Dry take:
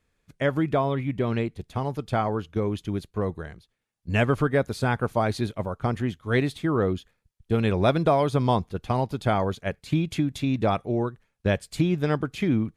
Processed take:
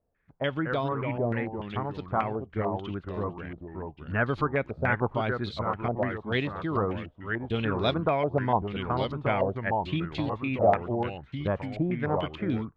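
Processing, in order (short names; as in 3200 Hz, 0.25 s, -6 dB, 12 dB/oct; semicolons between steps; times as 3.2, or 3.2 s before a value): echoes that change speed 0.194 s, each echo -2 st, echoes 2, each echo -6 dB; stepped low-pass 6.8 Hz 670–4000 Hz; gain -6.5 dB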